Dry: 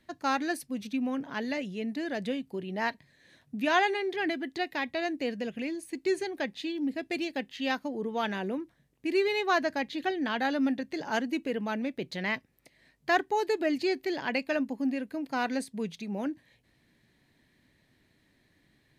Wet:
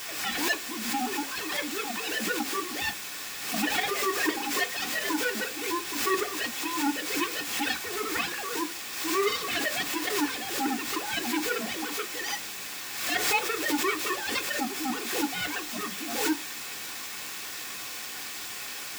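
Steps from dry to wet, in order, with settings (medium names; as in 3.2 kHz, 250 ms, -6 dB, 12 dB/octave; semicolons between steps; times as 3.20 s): formants replaced by sine waves; reverse; compression 10:1, threshold -35 dBFS, peak gain reduction 20.5 dB; reverse; Chebyshev shaper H 3 -11 dB, 7 -17 dB, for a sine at -27 dBFS; in parallel at -10 dB: word length cut 6-bit, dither triangular; on the sum: reverberation RT60 0.20 s, pre-delay 3 ms, DRR 4.5 dB; swell ahead of each attack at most 50 dB/s; trim +5.5 dB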